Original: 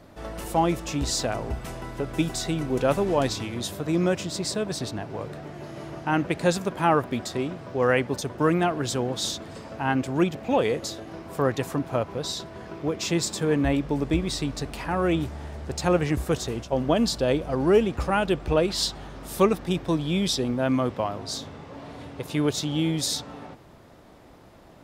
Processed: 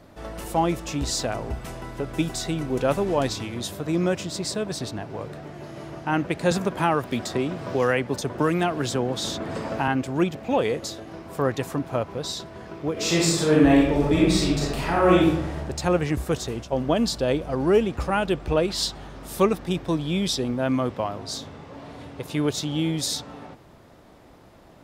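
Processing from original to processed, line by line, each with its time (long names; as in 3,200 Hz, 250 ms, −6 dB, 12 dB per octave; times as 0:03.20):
0:06.51–0:09.88: multiband upward and downward compressor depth 70%
0:12.92–0:15.57: thrown reverb, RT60 0.89 s, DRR −5.5 dB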